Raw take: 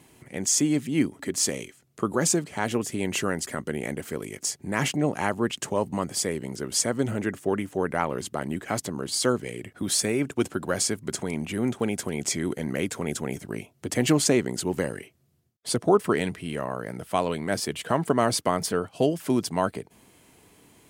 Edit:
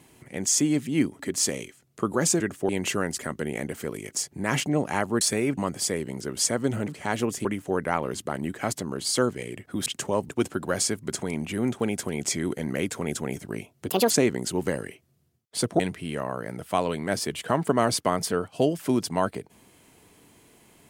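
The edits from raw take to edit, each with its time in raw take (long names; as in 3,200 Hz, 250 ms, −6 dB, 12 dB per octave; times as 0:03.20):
0:02.40–0:02.97: swap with 0:07.23–0:07.52
0:05.49–0:05.92: swap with 0:09.93–0:10.29
0:13.89–0:14.22: play speed 154%
0:15.91–0:16.20: remove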